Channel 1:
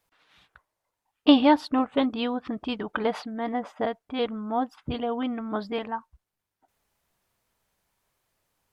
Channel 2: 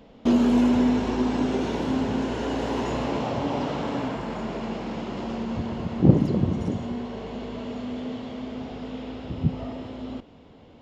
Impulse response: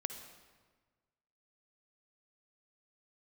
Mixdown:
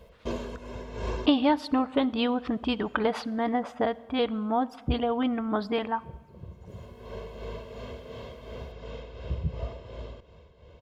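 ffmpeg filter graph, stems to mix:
-filter_complex "[0:a]acompressor=threshold=-25dB:ratio=2.5,volume=1dB,asplit=3[a][b][c];[b]volume=-11.5dB[d];[1:a]aecho=1:1:1.9:0.86,tremolo=f=2.8:d=0.54,volume=-4.5dB[e];[c]apad=whole_len=476966[f];[e][f]sidechaincompress=threshold=-59dB:ratio=6:attack=9.3:release=568[g];[2:a]atrim=start_sample=2205[h];[d][h]afir=irnorm=-1:irlink=0[i];[a][g][i]amix=inputs=3:normalize=0,equalizer=f=65:t=o:w=0.54:g=11"

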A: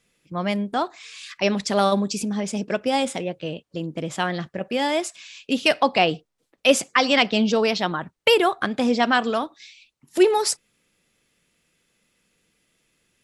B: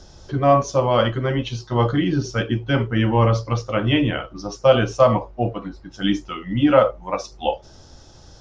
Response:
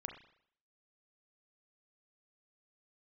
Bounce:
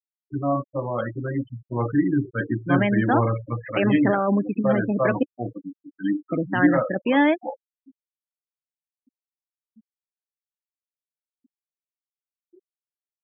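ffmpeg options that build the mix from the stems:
-filter_complex "[0:a]alimiter=limit=-13.5dB:level=0:latency=1:release=30,adelay=2350,volume=1.5dB,asplit=3[a][b][c];[a]atrim=end=5.23,asetpts=PTS-STARTPTS,afade=t=out:st=5.226:d=0.004:c=hsin[d];[b]atrim=start=5.23:end=6.3,asetpts=PTS-STARTPTS,volume=0[e];[c]atrim=start=6.3,asetpts=PTS-STARTPTS,afade=t=in:d=0.004:c=hsin[f];[d][e][f]concat=n=3:v=0:a=1[g];[1:a]dynaudnorm=f=570:g=5:m=14dB,volume=-10.5dB,asplit=2[h][i];[i]apad=whole_len=687316[j];[g][j]sidechaingate=range=-31dB:threshold=-48dB:ratio=16:detection=peak[k];[k][h]amix=inputs=2:normalize=0,highpass=110,equalizer=f=130:t=q:w=4:g=5,equalizer=f=290:t=q:w=4:g=9,equalizer=f=1.7k:t=q:w=4:g=8,lowpass=f=2.9k:w=0.5412,lowpass=f=2.9k:w=1.3066,afftfilt=real='re*gte(hypot(re,im),0.0631)':imag='im*gte(hypot(re,im),0.0631)':win_size=1024:overlap=0.75"

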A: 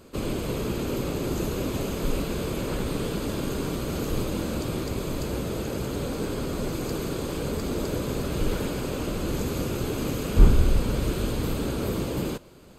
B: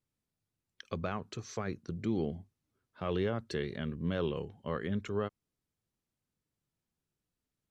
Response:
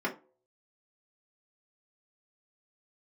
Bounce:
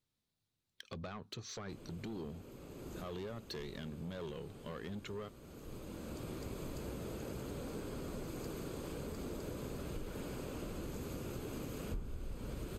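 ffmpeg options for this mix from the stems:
-filter_complex "[0:a]equalizer=f=3.9k:t=o:w=0.77:g=-2.5,adelay=1550,volume=-11.5dB[a];[1:a]equalizer=f=3.9k:w=2:g=8.5,acompressor=threshold=-43dB:ratio=1.5,asoftclip=type=tanh:threshold=-36dB,volume=-0.5dB,asplit=2[b][c];[c]apad=whole_len=632328[d];[a][d]sidechaincompress=threshold=-55dB:ratio=16:attack=39:release=1150[e];[e][b]amix=inputs=2:normalize=0,acompressor=threshold=-39dB:ratio=6"

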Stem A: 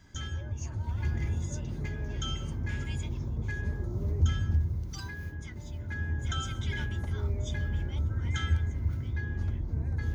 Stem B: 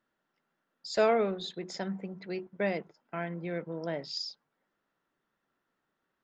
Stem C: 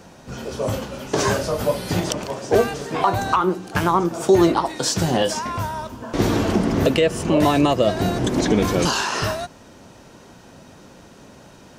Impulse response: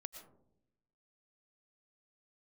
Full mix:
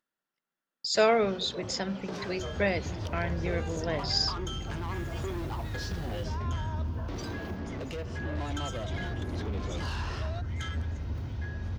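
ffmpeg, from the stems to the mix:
-filter_complex "[0:a]asoftclip=type=tanh:threshold=-27.5dB,adelay=2250,volume=-1dB[a];[1:a]highshelf=f=2.3k:g=9,acompressor=mode=upward:threshold=-34dB:ratio=2.5,volume=1.5dB[b];[2:a]lowpass=f=5k:w=0.5412,lowpass=f=5k:w=1.3066,asoftclip=type=tanh:threshold=-19.5dB,acompressor=threshold=-39dB:ratio=2.5,adelay=950,volume=-4dB[c];[a][b][c]amix=inputs=3:normalize=0,agate=range=-38dB:threshold=-45dB:ratio=16:detection=peak"

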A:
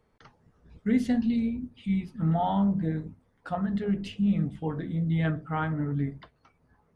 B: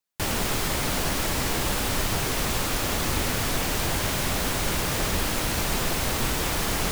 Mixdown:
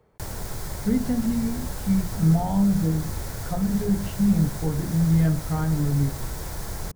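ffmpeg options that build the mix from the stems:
-filter_complex "[0:a]equalizer=f=270:w=0.31:g=11,volume=1dB[a];[1:a]equalizer=f=2.8k:t=o:w=0.87:g=-12.5,bandreject=f=1.2k:w=11,volume=-1.5dB[b];[a][b]amix=inputs=2:normalize=0,equalizer=f=250:w=1.7:g=-10,acrossover=split=300[c][d];[d]acompressor=threshold=-48dB:ratio=1.5[e];[c][e]amix=inputs=2:normalize=0"

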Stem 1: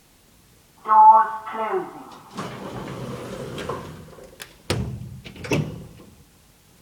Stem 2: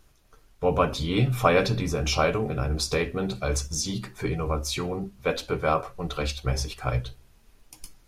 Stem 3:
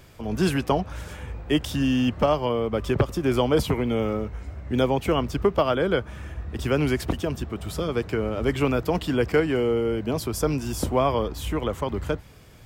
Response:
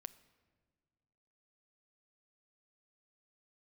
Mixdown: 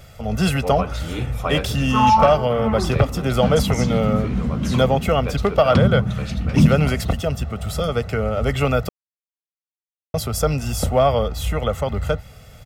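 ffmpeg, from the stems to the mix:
-filter_complex "[0:a]lowpass=4.5k,lowshelf=f=310:t=q:w=3:g=11,adelay=1050,volume=-8.5dB[a];[1:a]volume=-11dB[b];[2:a]aecho=1:1:1.5:0.76,volume=-3dB,asplit=3[c][d][e];[c]atrim=end=8.89,asetpts=PTS-STARTPTS,afade=t=out:st=8.886:d=0.004:c=hsin[f];[d]atrim=start=8.89:end=10.14,asetpts=PTS-STARTPTS,volume=0[g];[e]atrim=start=10.14,asetpts=PTS-STARTPTS,afade=t=in:d=0.004:c=hsin[h];[f][g][h]concat=n=3:v=0:a=1[i];[a][b][i]amix=inputs=3:normalize=0,acontrast=69"

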